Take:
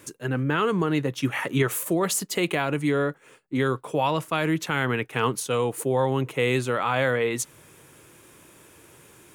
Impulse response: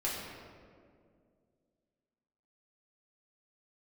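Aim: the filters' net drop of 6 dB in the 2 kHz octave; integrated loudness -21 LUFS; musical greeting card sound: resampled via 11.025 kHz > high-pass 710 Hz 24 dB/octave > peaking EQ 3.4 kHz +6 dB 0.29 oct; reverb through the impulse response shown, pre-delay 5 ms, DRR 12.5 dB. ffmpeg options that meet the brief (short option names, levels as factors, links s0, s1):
-filter_complex "[0:a]equalizer=f=2000:t=o:g=-8.5,asplit=2[s0][s1];[1:a]atrim=start_sample=2205,adelay=5[s2];[s1][s2]afir=irnorm=-1:irlink=0,volume=0.126[s3];[s0][s3]amix=inputs=2:normalize=0,aresample=11025,aresample=44100,highpass=f=710:w=0.5412,highpass=f=710:w=1.3066,equalizer=f=3400:t=o:w=0.29:g=6,volume=3.76"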